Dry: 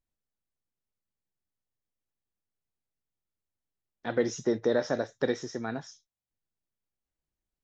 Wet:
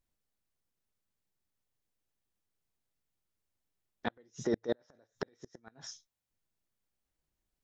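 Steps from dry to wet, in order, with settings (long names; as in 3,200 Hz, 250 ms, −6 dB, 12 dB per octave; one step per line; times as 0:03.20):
0:04.34–0:05.60: compressor whose output falls as the input rises −30 dBFS, ratio −1
gate with flip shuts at −22 dBFS, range −39 dB
level +3.5 dB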